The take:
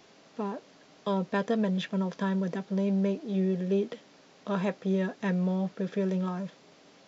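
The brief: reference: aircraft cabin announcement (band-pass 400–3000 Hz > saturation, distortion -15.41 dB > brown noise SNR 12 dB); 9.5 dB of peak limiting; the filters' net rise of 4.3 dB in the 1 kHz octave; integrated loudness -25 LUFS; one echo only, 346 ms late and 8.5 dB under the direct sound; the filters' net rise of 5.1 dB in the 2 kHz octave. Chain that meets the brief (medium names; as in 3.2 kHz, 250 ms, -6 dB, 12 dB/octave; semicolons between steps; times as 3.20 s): peaking EQ 1 kHz +4 dB; peaking EQ 2 kHz +5.5 dB; peak limiter -21.5 dBFS; band-pass 400–3000 Hz; delay 346 ms -8.5 dB; saturation -29.5 dBFS; brown noise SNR 12 dB; trim +13.5 dB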